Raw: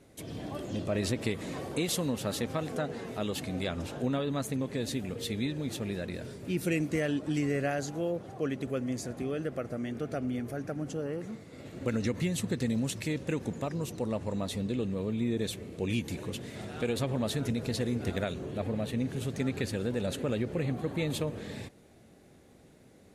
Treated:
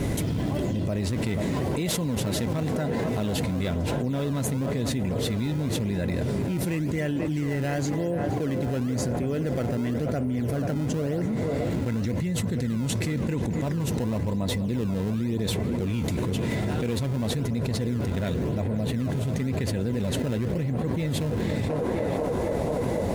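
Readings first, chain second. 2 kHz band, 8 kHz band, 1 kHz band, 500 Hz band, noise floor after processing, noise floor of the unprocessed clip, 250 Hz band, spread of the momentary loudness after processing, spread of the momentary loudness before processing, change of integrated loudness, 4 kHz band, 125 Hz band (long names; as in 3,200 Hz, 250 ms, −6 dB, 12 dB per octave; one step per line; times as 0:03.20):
+3.0 dB, +4.5 dB, +6.0 dB, +5.0 dB, −28 dBFS, −58 dBFS, +6.0 dB, 0 LU, 6 LU, +6.0 dB, +3.5 dB, +9.5 dB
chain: bass and treble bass +8 dB, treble 0 dB
notch filter 1,200 Hz, Q 10
hollow resonant body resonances 1,000/2,000 Hz, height 11 dB, ringing for 90 ms
in parallel at −9 dB: sample-and-hold swept by an LFO 22×, swing 160% 0.95 Hz
on the sum: feedback echo with a band-pass in the loop 487 ms, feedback 77%, band-pass 690 Hz, level −8.5 dB
envelope flattener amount 100%
level −8 dB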